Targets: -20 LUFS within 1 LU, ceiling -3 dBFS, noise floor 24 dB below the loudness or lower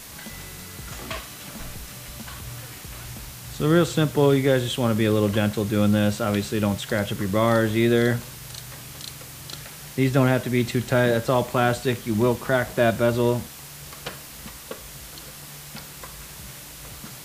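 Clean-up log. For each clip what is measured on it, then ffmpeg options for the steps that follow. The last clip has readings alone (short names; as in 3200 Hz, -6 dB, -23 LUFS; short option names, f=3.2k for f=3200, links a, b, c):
noise floor -41 dBFS; noise floor target -46 dBFS; loudness -22.0 LUFS; peak -6.0 dBFS; loudness target -20.0 LUFS
-> -af "afftdn=nr=6:nf=-41"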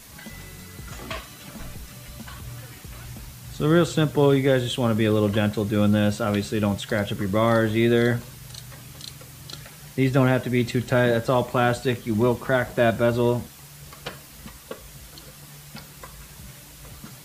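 noise floor -45 dBFS; noise floor target -46 dBFS
-> -af "afftdn=nr=6:nf=-45"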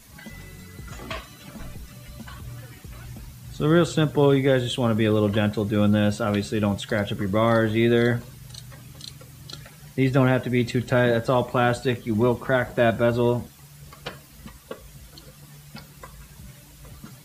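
noise floor -48 dBFS; loudness -22.0 LUFS; peak -6.0 dBFS; loudness target -20.0 LUFS
-> -af "volume=2dB"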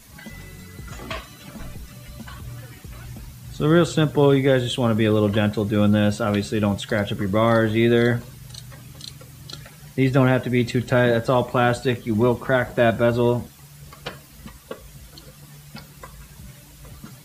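loudness -20.0 LUFS; peak -4.0 dBFS; noise floor -46 dBFS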